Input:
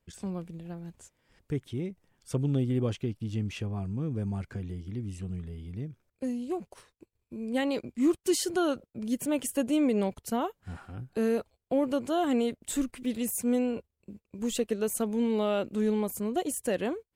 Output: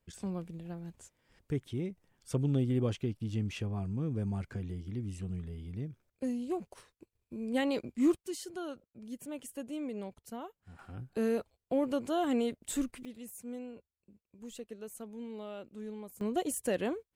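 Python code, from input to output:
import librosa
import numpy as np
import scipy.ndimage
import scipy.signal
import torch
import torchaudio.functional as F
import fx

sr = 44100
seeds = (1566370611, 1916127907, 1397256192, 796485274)

y = fx.gain(x, sr, db=fx.steps((0.0, -2.0), (8.22, -13.0), (10.79, -3.5), (13.05, -15.5), (16.21, -2.5)))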